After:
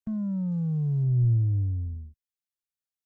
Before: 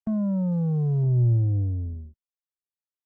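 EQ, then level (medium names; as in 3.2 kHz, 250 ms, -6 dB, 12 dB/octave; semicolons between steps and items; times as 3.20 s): peaking EQ 600 Hz -14 dB 2.2 oct; 0.0 dB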